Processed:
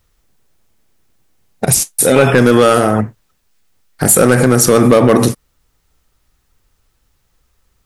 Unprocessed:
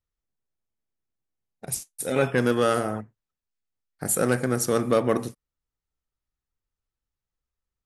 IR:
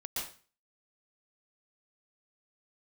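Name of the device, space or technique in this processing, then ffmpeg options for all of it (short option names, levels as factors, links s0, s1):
loud club master: -af "acompressor=threshold=0.0501:ratio=2,asoftclip=type=hard:threshold=0.1,alimiter=level_in=25.1:limit=0.891:release=50:level=0:latency=1,volume=0.891"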